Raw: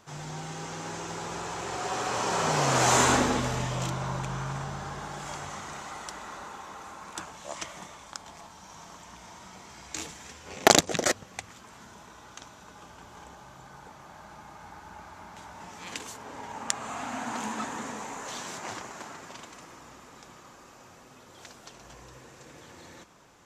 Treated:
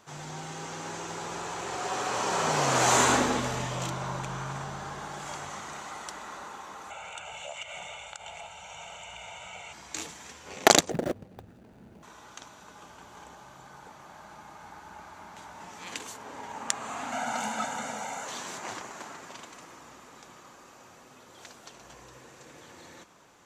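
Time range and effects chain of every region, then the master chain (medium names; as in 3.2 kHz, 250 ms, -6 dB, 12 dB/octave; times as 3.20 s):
6.90–9.73 s: FFT filter 110 Hz 0 dB, 180 Hz -6 dB, 250 Hz -15 dB, 370 Hz +4 dB, 1.8 kHz -1 dB, 2.6 kHz +15 dB, 5.1 kHz -10 dB, 7.3 kHz +4 dB, 11 kHz -11 dB + compression, threshold -38 dBFS + comb 1.4 ms, depth 79%
10.90–12.03 s: median filter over 41 samples + bass shelf 380 Hz +6.5 dB
17.12–18.25 s: bass shelf 79 Hz -10.5 dB + comb 1.4 ms, depth 99%
whole clip: bass shelf 130 Hz -7.5 dB; band-stop 5.2 kHz, Q 22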